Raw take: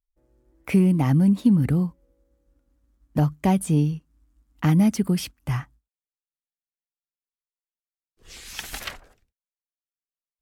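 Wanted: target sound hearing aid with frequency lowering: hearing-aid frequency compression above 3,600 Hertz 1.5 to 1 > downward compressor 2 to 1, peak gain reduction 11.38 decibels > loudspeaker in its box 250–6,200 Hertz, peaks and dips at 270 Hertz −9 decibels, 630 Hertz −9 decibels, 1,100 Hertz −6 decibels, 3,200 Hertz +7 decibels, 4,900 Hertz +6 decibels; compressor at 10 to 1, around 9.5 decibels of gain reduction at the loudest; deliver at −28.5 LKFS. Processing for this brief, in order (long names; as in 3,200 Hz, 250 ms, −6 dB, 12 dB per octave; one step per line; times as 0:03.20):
downward compressor 10 to 1, threshold −23 dBFS
hearing-aid frequency compression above 3,600 Hz 1.5 to 1
downward compressor 2 to 1, threshold −42 dBFS
loudspeaker in its box 250–6,200 Hz, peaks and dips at 270 Hz −9 dB, 630 Hz −9 dB, 1,100 Hz −6 dB, 3,200 Hz +7 dB, 4,900 Hz +6 dB
level +14.5 dB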